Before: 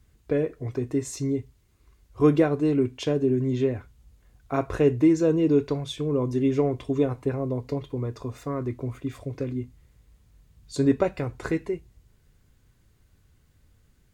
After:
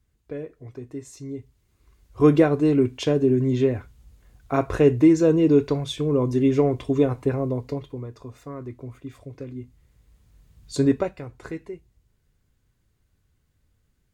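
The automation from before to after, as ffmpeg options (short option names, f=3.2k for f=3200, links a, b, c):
-af "volume=13dB,afade=t=in:st=1.25:d=1.11:silence=0.237137,afade=t=out:st=7.38:d=0.7:silence=0.334965,afade=t=in:st=9.51:d=1.25:silence=0.334965,afade=t=out:st=10.76:d=0.41:silence=0.298538"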